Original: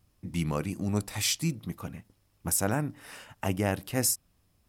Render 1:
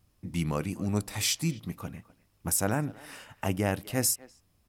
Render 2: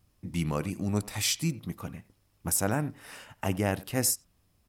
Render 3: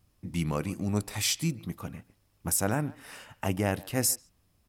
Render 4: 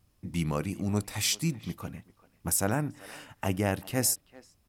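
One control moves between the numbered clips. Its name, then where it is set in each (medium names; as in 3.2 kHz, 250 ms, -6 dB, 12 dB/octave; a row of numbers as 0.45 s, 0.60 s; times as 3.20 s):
speakerphone echo, time: 250 ms, 90 ms, 140 ms, 390 ms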